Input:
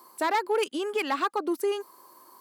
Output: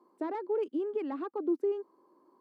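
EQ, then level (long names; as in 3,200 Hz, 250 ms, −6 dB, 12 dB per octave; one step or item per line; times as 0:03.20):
resonant band-pass 300 Hz, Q 1.7
0.0 dB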